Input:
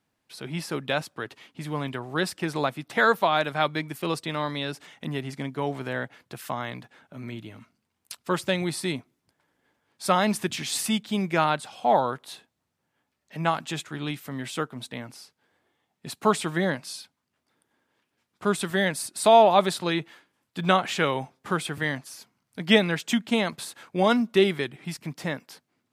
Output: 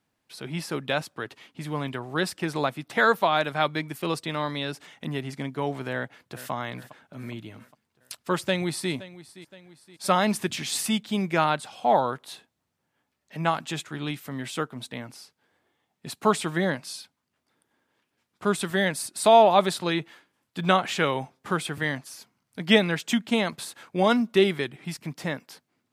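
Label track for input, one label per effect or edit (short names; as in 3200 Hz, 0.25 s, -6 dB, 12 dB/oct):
5.950000	6.510000	echo throw 0.41 s, feedback 55%, level -14 dB
8.370000	8.920000	echo throw 0.52 s, feedback 50%, level -17.5 dB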